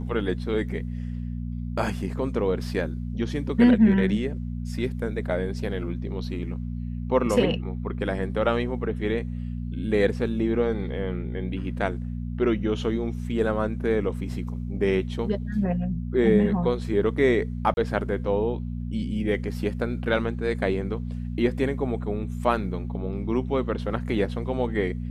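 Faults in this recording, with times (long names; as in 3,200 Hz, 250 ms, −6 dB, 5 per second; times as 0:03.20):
mains hum 60 Hz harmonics 4 −31 dBFS
0:17.74–0:17.77: drop-out 31 ms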